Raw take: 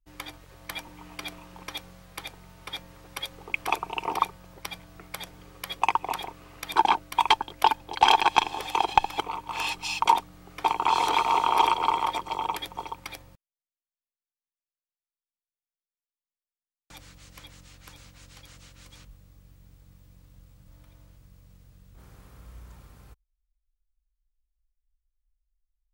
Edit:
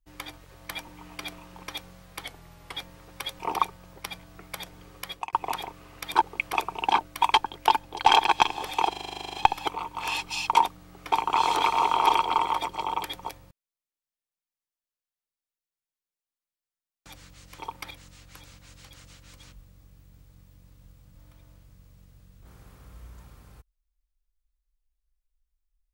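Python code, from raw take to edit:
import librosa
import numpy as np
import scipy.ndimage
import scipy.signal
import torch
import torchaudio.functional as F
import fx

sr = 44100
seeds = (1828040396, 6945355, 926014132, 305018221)

y = fx.edit(x, sr, fx.speed_span(start_s=2.25, length_s=0.48, speed=0.93),
    fx.move(start_s=3.36, length_s=0.64, to_s=6.82),
    fx.fade_out_span(start_s=5.54, length_s=0.39, curve='qsin'),
    fx.stutter(start_s=8.86, slice_s=0.04, count=12),
    fx.move(start_s=12.82, length_s=0.32, to_s=17.43), tone=tone)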